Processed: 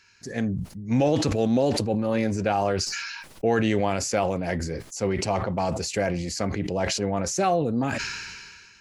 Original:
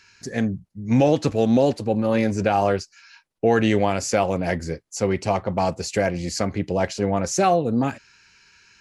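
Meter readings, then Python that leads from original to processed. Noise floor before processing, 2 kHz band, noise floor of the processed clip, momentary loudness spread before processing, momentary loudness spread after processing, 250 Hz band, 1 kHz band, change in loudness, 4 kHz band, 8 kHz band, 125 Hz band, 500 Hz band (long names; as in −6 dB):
−61 dBFS, −1.5 dB, −50 dBFS, 8 LU, 9 LU, −3.5 dB, −4.0 dB, −3.5 dB, +2.0 dB, 0.0 dB, −2.5 dB, −4.0 dB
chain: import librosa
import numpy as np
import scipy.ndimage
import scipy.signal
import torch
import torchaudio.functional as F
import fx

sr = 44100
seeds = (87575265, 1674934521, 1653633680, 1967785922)

y = fx.sustainer(x, sr, db_per_s=32.0)
y = F.gain(torch.from_numpy(y), -4.5).numpy()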